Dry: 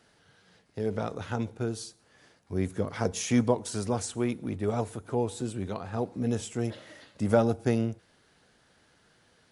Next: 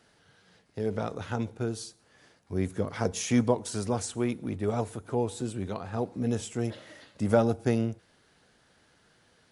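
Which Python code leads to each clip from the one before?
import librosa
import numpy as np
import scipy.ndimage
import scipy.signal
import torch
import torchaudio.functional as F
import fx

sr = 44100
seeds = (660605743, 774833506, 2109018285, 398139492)

y = x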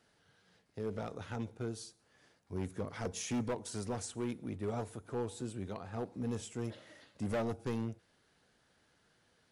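y = np.clip(10.0 ** (23.0 / 20.0) * x, -1.0, 1.0) / 10.0 ** (23.0 / 20.0)
y = y * librosa.db_to_amplitude(-7.5)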